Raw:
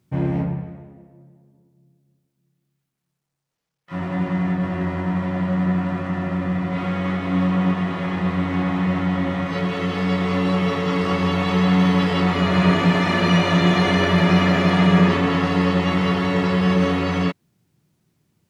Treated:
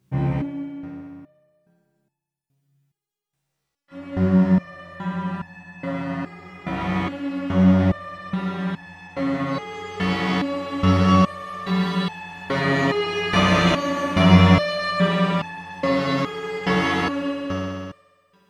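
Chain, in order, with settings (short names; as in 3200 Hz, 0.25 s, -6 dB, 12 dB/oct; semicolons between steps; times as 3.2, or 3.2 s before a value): multi-head echo 64 ms, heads all three, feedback 66%, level -8 dB; stepped resonator 2.4 Hz 65–860 Hz; gain +8 dB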